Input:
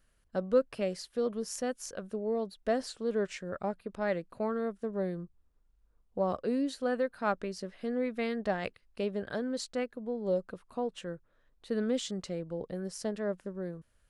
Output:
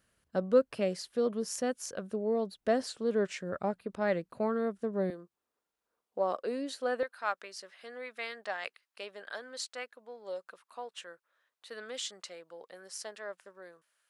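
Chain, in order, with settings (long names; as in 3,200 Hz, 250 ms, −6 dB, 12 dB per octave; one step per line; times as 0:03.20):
high-pass filter 89 Hz 12 dB per octave, from 0:05.10 430 Hz, from 0:07.03 960 Hz
level +1.5 dB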